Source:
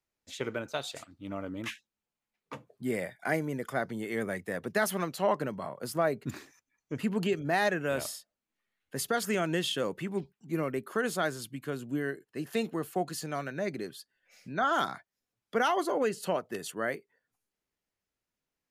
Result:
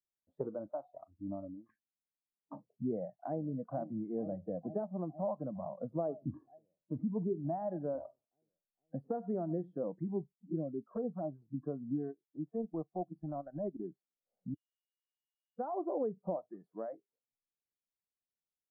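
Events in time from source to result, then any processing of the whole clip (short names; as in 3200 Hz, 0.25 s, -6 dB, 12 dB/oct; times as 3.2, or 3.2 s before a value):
1.1–1.69 fade out, to -22.5 dB
2.89–3.43 echo throw 0.46 s, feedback 75%, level -11.5 dB
4.09–5.19 bell 5100 Hz -11.5 dB 2.9 oct
5.79–9.75 feedback echo 94 ms, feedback 18%, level -18 dB
10.35–11.42 envelope flanger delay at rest 4.8 ms, full sweep at -25 dBFS
12.07–13.85 transient shaper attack -8 dB, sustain -12 dB
14.54–15.59 bleep 2870 Hz -22.5 dBFS
16.49–16.93 tilt +2.5 dB/oct
whole clip: compressor 2.5:1, threshold -39 dBFS; inverse Chebyshev low-pass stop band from 2600 Hz, stop band 60 dB; spectral noise reduction 21 dB; gain +4 dB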